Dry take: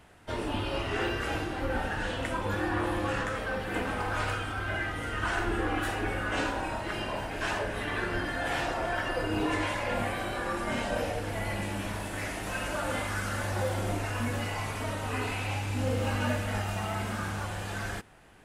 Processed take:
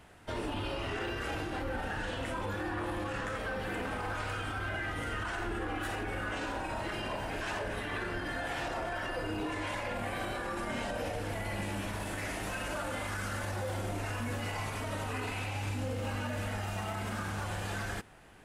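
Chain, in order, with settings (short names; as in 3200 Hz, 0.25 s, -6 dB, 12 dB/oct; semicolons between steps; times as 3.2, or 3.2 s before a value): limiter -27.5 dBFS, peak gain reduction 11 dB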